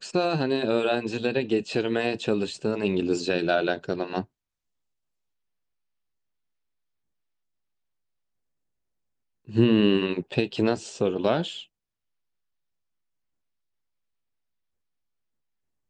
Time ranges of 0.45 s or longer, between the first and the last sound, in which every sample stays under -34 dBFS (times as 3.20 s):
4.22–9.49 s